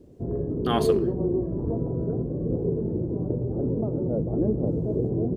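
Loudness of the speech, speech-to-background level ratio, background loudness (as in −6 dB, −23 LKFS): −30.5 LKFS, −3.5 dB, −27.0 LKFS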